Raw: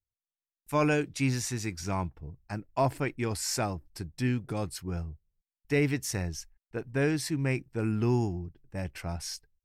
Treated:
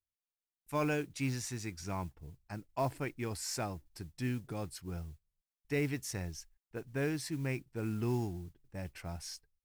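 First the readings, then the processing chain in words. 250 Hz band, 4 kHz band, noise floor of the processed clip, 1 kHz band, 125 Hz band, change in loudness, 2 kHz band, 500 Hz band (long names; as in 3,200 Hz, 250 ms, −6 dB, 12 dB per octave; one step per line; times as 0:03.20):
−7.0 dB, −7.0 dB, below −85 dBFS, −7.0 dB, −7.0 dB, −7.0 dB, −7.0 dB, −7.0 dB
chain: noise that follows the level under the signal 25 dB
level −7 dB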